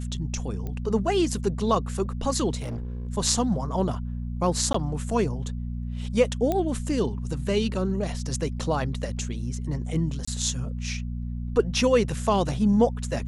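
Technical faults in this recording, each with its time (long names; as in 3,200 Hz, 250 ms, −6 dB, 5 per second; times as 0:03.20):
mains hum 60 Hz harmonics 4 −31 dBFS
0:00.67: click −22 dBFS
0:02.60–0:03.09: clipping −28.5 dBFS
0:04.73–0:04.74: drop-out 14 ms
0:06.52: click −13 dBFS
0:10.25–0:10.28: drop-out 25 ms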